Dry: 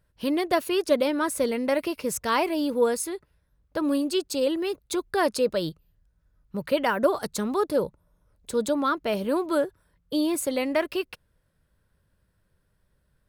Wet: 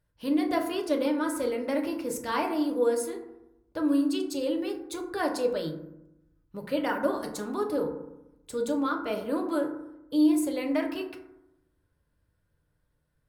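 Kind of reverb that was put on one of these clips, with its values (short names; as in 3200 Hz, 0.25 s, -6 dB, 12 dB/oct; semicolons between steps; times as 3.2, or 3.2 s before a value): FDN reverb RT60 0.87 s, low-frequency decay 1.25×, high-frequency decay 0.35×, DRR 1.5 dB; gain -7.5 dB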